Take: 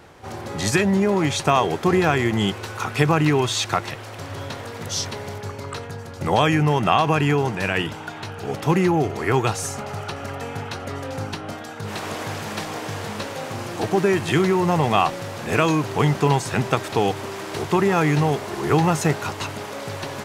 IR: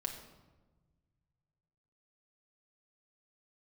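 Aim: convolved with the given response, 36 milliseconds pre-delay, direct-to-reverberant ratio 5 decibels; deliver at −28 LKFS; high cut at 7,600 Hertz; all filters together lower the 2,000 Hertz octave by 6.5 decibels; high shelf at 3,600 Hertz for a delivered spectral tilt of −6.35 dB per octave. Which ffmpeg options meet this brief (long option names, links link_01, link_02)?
-filter_complex "[0:a]lowpass=7600,equalizer=frequency=2000:width_type=o:gain=-6.5,highshelf=frequency=3600:gain=-6.5,asplit=2[link_01][link_02];[1:a]atrim=start_sample=2205,adelay=36[link_03];[link_02][link_03]afir=irnorm=-1:irlink=0,volume=-5.5dB[link_04];[link_01][link_04]amix=inputs=2:normalize=0,volume=-6dB"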